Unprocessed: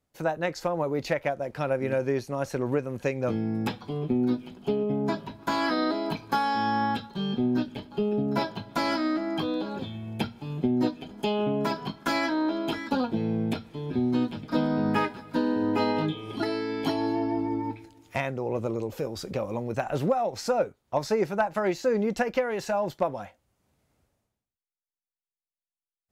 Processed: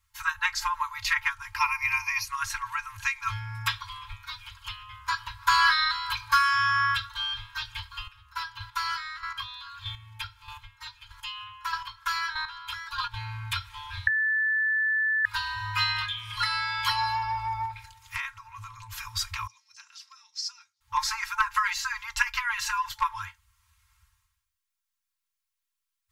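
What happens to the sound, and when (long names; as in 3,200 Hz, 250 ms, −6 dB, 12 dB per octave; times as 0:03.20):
0:01.56–0:02.25: EQ curve with evenly spaced ripples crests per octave 0.83, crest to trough 17 dB
0:07.98–0:13.14: square-wave tremolo 1.6 Hz, depth 65%, duty 15%
0:14.07–0:15.25: beep over 1,750 Hz −16.5 dBFS
0:17.65–0:18.95: downward compressor 3 to 1, threshold −34 dBFS
0:19.47–0:20.81: resonant band-pass 5,200 Hz, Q 5.8
whole clip: brick-wall band-stop 110–880 Hz; comb filter 3.7 ms, depth 87%; level +7 dB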